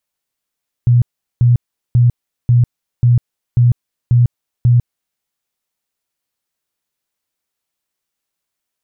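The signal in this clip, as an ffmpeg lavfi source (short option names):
-f lavfi -i "aevalsrc='0.473*sin(2*PI*121*mod(t,0.54))*lt(mod(t,0.54),18/121)':d=4.32:s=44100"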